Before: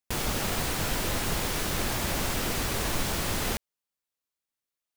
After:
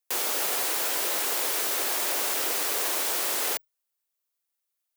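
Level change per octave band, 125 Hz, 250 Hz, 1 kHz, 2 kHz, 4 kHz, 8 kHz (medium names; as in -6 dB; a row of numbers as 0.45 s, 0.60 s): under -30 dB, -10.0 dB, 0.0 dB, +0.5 dB, +1.5 dB, +5.0 dB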